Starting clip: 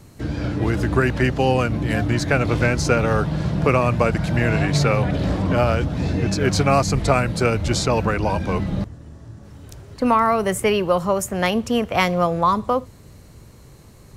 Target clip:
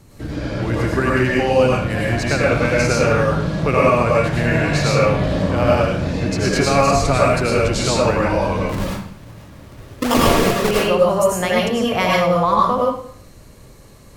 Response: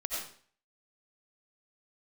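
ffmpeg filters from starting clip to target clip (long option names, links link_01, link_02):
-filter_complex "[0:a]asettb=1/sr,asplit=3[link_01][link_02][link_03];[link_01]atrim=end=8.694[link_04];[link_02]atrim=start=8.69:end=10.71,asetpts=PTS-STARTPTS,afade=type=in:duration=0.004:curve=qsin,afade=type=out:start_time=2.016:duration=0.004:curve=qsin,acrusher=samples=41:mix=1:aa=0.000001:lfo=1:lforange=41:lforate=4[link_05];[link_03]atrim=start=10.706[link_06];[link_04][link_05]acrossfade=duration=0.004:curve1=hsin:curve2=qsin[link_07];[link_07][link_06]acrossfade=duration=0.004:curve1=qsin:curve2=hsin[link_08];[1:a]atrim=start_sample=2205,asetrate=38808,aresample=44100[link_09];[link_08][link_09]afir=irnorm=-1:irlink=0,volume=-1dB"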